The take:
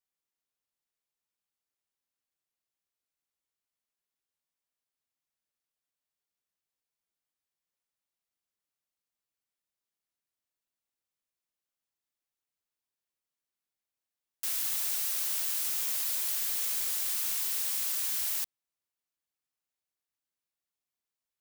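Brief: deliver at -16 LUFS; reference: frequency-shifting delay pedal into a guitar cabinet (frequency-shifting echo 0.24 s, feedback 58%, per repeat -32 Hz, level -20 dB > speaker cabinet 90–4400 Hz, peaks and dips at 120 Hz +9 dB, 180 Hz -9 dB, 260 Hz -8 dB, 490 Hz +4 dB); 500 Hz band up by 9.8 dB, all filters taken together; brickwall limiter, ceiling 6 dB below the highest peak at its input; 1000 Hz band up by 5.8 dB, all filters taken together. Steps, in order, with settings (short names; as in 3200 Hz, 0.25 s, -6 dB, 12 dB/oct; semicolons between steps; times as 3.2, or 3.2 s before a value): bell 500 Hz +8.5 dB; bell 1000 Hz +5 dB; limiter -24.5 dBFS; frequency-shifting echo 0.24 s, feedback 58%, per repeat -32 Hz, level -20 dB; speaker cabinet 90–4400 Hz, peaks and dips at 120 Hz +9 dB, 180 Hz -9 dB, 260 Hz -8 dB, 490 Hz +4 dB; gain +28.5 dB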